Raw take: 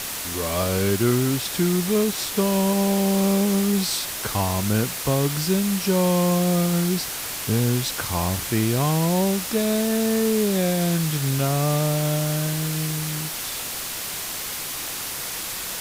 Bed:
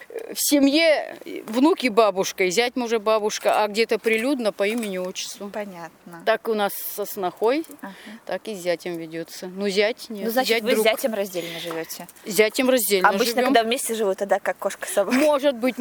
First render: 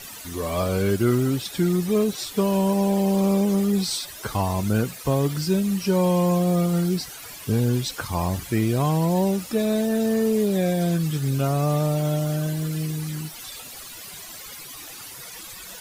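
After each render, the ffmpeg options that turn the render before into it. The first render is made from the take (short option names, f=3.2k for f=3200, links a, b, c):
-af "afftdn=nr=14:nf=-31"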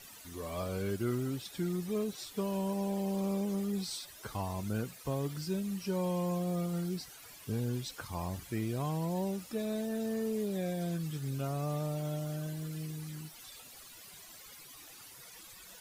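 -af "volume=-13dB"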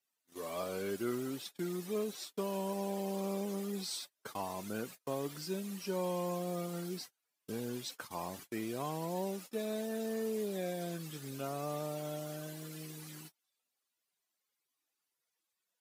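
-af "agate=range=-35dB:threshold=-44dB:ratio=16:detection=peak,highpass=260"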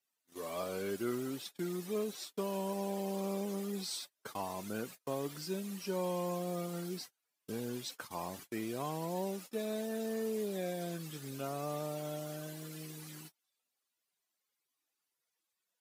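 -af anull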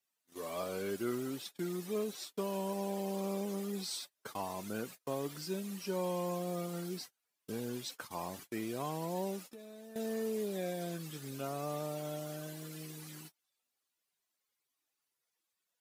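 -filter_complex "[0:a]asettb=1/sr,asplit=3[a][b][c];[a]atrim=end=9.424[d];[b]atrim=start=9.42:end=9.96,asetpts=PTS-STARTPTS,afade=t=in:d=0.004:c=qsin,afade=t=out:st=0.536:d=0.004:c=qsin,acompressor=threshold=-48dB:ratio=6:attack=3.2:release=140:knee=1:detection=peak[e];[c]atrim=start=9.956[f];[d][e]acrossfade=d=0.004:c1=hsin:c2=qsin[g];[g][f]acrossfade=d=0.004:c1=qsin:c2=hsin"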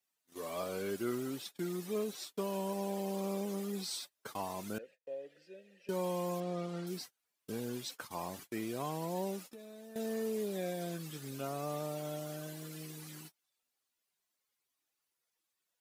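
-filter_complex "[0:a]asettb=1/sr,asplit=3[a][b][c];[a]atrim=end=4.784[d];[b]atrim=start=4.78:end=5.89,asetpts=PTS-STARTPTS,afade=t=in:d=0.004:c=qsin,afade=t=out:st=1.106:d=0.004:c=qsin,asplit=3[e][f][g];[e]bandpass=f=530:t=q:w=8,volume=0dB[h];[f]bandpass=f=1.84k:t=q:w=8,volume=-6dB[i];[g]bandpass=f=2.48k:t=q:w=8,volume=-9dB[j];[h][i][j]amix=inputs=3:normalize=0[k];[c]atrim=start=5.886[l];[d][k]acrossfade=d=0.004:c1=hsin:c2=qsin[m];[m][l]acrossfade=d=0.004:c1=qsin:c2=hsin,asettb=1/sr,asplit=3[n][o][p];[n]atrim=end=6.404[q];[o]atrim=start=6.4:end=6.87,asetpts=PTS-STARTPTS,afade=t=in:d=0.004:c=qsin,afade=t=out:st=0.466:d=0.004:c=qsin,lowpass=4.7k[r];[p]atrim=start=6.866[s];[q][r]acrossfade=d=0.004:c1=hsin:c2=qsin[t];[t][s]acrossfade=d=0.004:c1=qsin:c2=hsin"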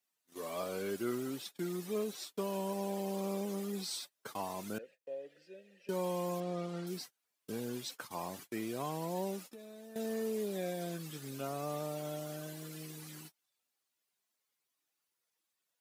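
-af "highpass=95"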